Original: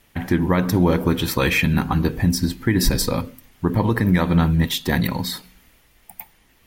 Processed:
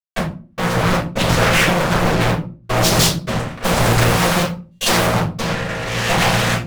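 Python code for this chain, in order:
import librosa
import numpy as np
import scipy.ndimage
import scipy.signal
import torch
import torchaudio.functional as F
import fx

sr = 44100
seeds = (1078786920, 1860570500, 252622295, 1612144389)

y = fx.chord_vocoder(x, sr, chord='bare fifth', root=46)
y = fx.recorder_agc(y, sr, target_db=-12.5, rise_db_per_s=26.0, max_gain_db=30)
y = fx.fuzz(y, sr, gain_db=46.0, gate_db=-43.0)
y = fx.high_shelf(y, sr, hz=3700.0, db=10.0, at=(2.83, 5.06))
y = y + 10.0 ** (-14.0 / 20.0) * np.pad(y, (int(83 * sr / 1000.0), 0))[:len(y)]
y = fx.step_gate(y, sr, bpm=78, pattern='x..xx.xxxxx', floor_db=-60.0, edge_ms=4.5)
y = fx.low_shelf(y, sr, hz=430.0, db=-6.5)
y = fx.room_shoebox(y, sr, seeds[0], volume_m3=170.0, walls='furnished', distance_m=5.5)
y = fx.doppler_dist(y, sr, depth_ms=0.77)
y = y * 10.0 ** (-6.5 / 20.0)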